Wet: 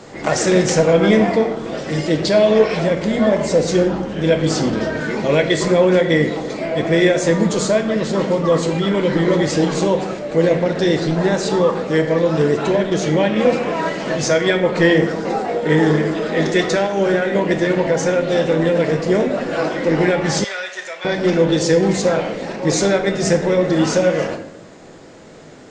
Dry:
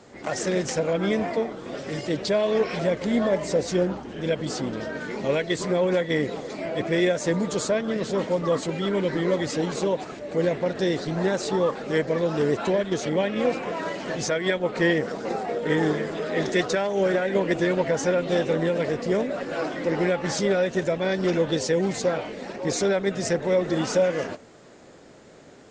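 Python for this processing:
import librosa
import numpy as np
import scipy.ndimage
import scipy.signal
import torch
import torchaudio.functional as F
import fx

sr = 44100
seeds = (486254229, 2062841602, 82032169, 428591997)

y = fx.room_shoebox(x, sr, seeds[0], volume_m3=240.0, walls='mixed', distance_m=0.65)
y = fx.rider(y, sr, range_db=10, speed_s=2.0)
y = fx.highpass(y, sr, hz=1300.0, slope=12, at=(20.44, 21.05))
y = F.gain(torch.from_numpy(y), 6.0).numpy()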